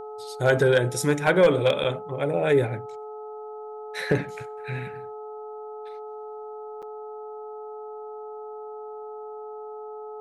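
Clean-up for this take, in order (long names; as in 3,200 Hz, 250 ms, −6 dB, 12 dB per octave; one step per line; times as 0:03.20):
clipped peaks rebuilt −11 dBFS
hum removal 428.5 Hz, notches 3
notch filter 720 Hz, Q 30
repair the gap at 0:01.84/0:06.82, 6.6 ms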